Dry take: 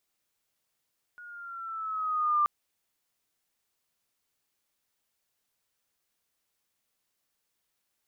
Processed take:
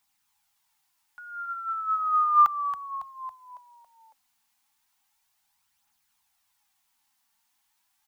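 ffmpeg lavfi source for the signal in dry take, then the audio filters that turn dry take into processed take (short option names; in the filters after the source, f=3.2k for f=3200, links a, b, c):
-f lavfi -i "aevalsrc='pow(10,(-20.5+23.5*(t/1.28-1))/20)*sin(2*PI*1450*1.28/(-3.5*log(2)/12)*(exp(-3.5*log(2)/12*t/1.28)-1))':d=1.28:s=44100"
-filter_complex "[0:a]firequalizer=gain_entry='entry(290,0);entry(450,-29);entry(820,13);entry(1200,5)':delay=0.05:min_phase=1,asplit=2[a][b];[b]asplit=6[c][d][e][f][g][h];[c]adelay=277,afreqshift=-50,volume=-9dB[i];[d]adelay=554,afreqshift=-100,volume=-15.2dB[j];[e]adelay=831,afreqshift=-150,volume=-21.4dB[k];[f]adelay=1108,afreqshift=-200,volume=-27.6dB[l];[g]adelay=1385,afreqshift=-250,volume=-33.8dB[m];[h]adelay=1662,afreqshift=-300,volume=-40dB[n];[i][j][k][l][m][n]amix=inputs=6:normalize=0[o];[a][o]amix=inputs=2:normalize=0,aphaser=in_gain=1:out_gain=1:delay=4.5:decay=0.37:speed=0.34:type=triangular"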